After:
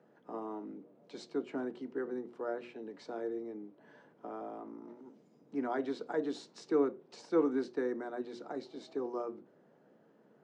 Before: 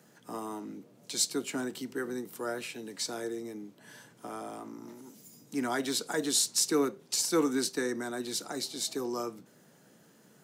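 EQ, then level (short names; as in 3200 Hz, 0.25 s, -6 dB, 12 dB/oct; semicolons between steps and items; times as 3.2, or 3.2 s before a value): band-pass 490 Hz, Q 0.78; air absorption 110 m; notches 60/120/180/240/300/360 Hz; 0.0 dB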